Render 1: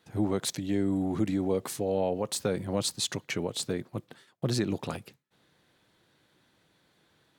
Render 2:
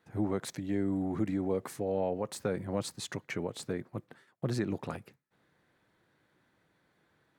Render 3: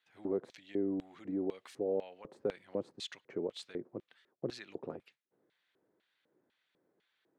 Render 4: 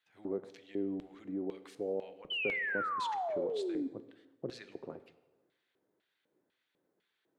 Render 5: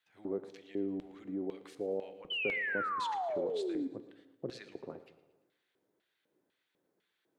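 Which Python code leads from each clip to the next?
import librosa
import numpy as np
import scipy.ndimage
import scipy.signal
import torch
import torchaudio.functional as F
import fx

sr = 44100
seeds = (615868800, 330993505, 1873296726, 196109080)

y1 = fx.high_shelf_res(x, sr, hz=2500.0, db=-6.0, q=1.5)
y1 = y1 * librosa.db_to_amplitude(-3.5)
y2 = fx.filter_lfo_bandpass(y1, sr, shape='square', hz=2.0, low_hz=400.0, high_hz=3200.0, q=2.0)
y2 = y2 * librosa.db_to_amplitude(2.0)
y3 = fx.spec_paint(y2, sr, seeds[0], shape='fall', start_s=2.3, length_s=1.58, low_hz=260.0, high_hz=3100.0, level_db=-33.0)
y3 = fx.rev_plate(y3, sr, seeds[1], rt60_s=1.2, hf_ratio=0.75, predelay_ms=0, drr_db=12.0)
y3 = y3 * librosa.db_to_amplitude(-2.5)
y4 = fx.echo_feedback(y3, sr, ms=114, feedback_pct=49, wet_db=-18)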